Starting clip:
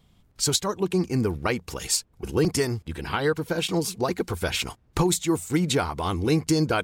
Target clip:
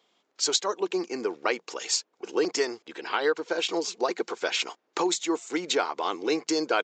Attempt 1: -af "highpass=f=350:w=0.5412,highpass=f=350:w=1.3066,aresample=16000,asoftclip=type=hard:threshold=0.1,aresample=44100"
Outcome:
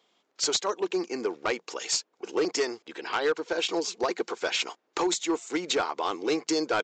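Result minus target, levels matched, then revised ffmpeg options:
hard clipper: distortion +39 dB
-af "highpass=f=350:w=0.5412,highpass=f=350:w=1.3066,aresample=16000,asoftclip=type=hard:threshold=0.282,aresample=44100"

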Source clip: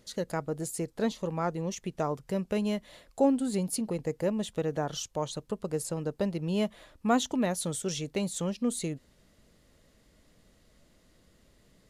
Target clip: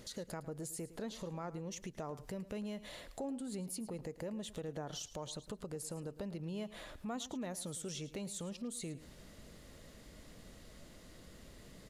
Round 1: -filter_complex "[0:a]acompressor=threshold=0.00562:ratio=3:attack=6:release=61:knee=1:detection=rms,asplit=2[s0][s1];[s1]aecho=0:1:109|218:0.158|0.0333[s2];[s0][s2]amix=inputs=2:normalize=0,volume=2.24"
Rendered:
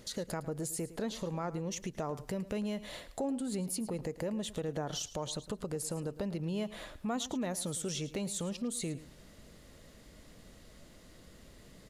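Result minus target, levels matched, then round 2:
compression: peak gain reduction -6.5 dB
-filter_complex "[0:a]acompressor=threshold=0.00188:ratio=3:attack=6:release=61:knee=1:detection=rms,asplit=2[s0][s1];[s1]aecho=0:1:109|218:0.158|0.0333[s2];[s0][s2]amix=inputs=2:normalize=0,volume=2.24"

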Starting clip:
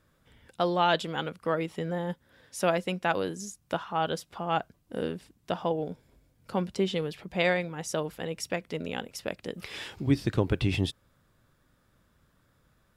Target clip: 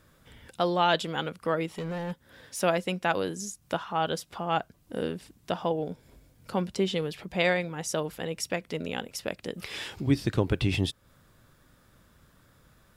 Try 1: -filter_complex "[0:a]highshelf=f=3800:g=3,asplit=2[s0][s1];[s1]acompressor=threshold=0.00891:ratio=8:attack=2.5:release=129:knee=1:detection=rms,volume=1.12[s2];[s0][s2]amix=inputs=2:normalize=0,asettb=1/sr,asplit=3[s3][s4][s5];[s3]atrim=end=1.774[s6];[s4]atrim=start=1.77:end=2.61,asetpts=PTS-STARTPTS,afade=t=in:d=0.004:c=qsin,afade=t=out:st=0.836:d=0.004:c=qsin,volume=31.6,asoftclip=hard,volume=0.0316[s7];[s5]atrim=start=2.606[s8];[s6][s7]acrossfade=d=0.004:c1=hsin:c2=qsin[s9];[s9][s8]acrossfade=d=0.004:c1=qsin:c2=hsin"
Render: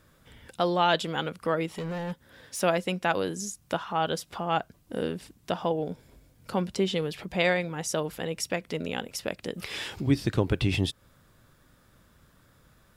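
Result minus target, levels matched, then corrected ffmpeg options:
compression: peak gain reduction -8.5 dB
-filter_complex "[0:a]highshelf=f=3800:g=3,asplit=2[s0][s1];[s1]acompressor=threshold=0.00299:ratio=8:attack=2.5:release=129:knee=1:detection=rms,volume=1.12[s2];[s0][s2]amix=inputs=2:normalize=0,asettb=1/sr,asplit=3[s3][s4][s5];[s3]atrim=end=1.774[s6];[s4]atrim=start=1.77:end=2.61,asetpts=PTS-STARTPTS,afade=t=in:d=0.004:c=qsin,afade=t=out:st=0.836:d=0.004:c=qsin,volume=31.6,asoftclip=hard,volume=0.0316[s7];[s5]atrim=start=2.606[s8];[s6][s7]acrossfade=d=0.004:c1=hsin:c2=qsin[s9];[s9][s8]acrossfade=d=0.004:c1=qsin:c2=hsin"

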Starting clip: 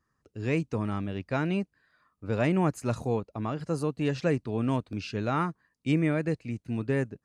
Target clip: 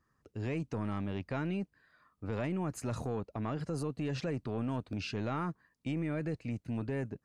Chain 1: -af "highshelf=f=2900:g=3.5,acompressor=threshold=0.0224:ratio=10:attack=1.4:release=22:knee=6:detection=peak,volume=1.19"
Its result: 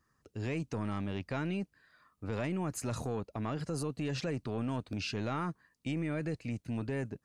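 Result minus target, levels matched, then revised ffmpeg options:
8 kHz band +5.0 dB
-af "highshelf=f=2900:g=-3.5,acompressor=threshold=0.0224:ratio=10:attack=1.4:release=22:knee=6:detection=peak,volume=1.19"

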